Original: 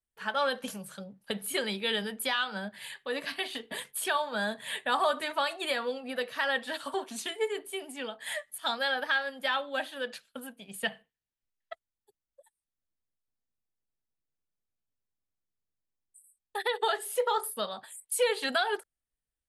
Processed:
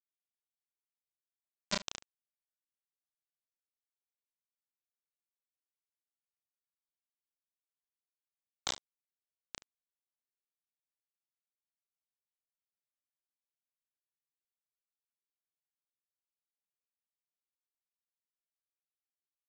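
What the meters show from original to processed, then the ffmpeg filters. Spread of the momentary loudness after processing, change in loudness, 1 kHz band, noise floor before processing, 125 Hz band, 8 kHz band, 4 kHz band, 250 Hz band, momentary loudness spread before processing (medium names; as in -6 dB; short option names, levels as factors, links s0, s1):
15 LU, -8.0 dB, -23.0 dB, under -85 dBFS, no reading, -11.5 dB, -14.5 dB, -17.5 dB, 12 LU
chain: -filter_complex "[0:a]afftfilt=real='re*gte(hypot(re,im),0.0708)':imag='im*gte(hypot(re,im),0.0708)':win_size=1024:overlap=0.75,equalizer=f=100:t=o:w=0.33:g=-8,equalizer=f=200:t=o:w=0.33:g=12,equalizer=f=1600:t=o:w=0.33:g=-4,acrossover=split=150|3000[s0][s1][s2];[s1]acompressor=threshold=0.0112:ratio=4[s3];[s0][s3][s2]amix=inputs=3:normalize=0,flanger=delay=18.5:depth=3.3:speed=1.8,acrossover=split=970[s4][s5];[s4]aeval=exprs='val(0)*(1-0.5/2+0.5/2*cos(2*PI*1.2*n/s))':c=same[s6];[s5]aeval=exprs='val(0)*(1-0.5/2-0.5/2*cos(2*PI*1.2*n/s))':c=same[s7];[s6][s7]amix=inputs=2:normalize=0,aresample=16000,acrusher=bits=4:mix=0:aa=0.000001,aresample=44100,aecho=1:1:32|74:0.668|0.141,volume=1.88"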